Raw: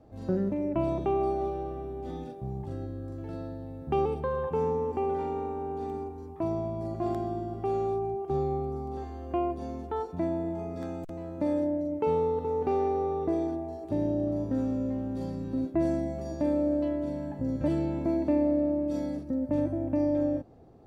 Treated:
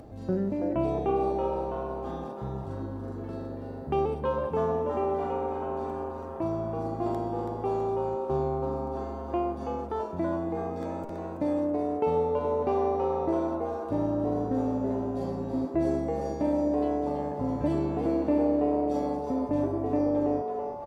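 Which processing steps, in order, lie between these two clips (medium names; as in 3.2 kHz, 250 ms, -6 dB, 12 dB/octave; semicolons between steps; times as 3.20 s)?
upward compressor, threshold -39 dBFS; frequency-shifting echo 328 ms, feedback 47%, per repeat +140 Hz, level -6.5 dB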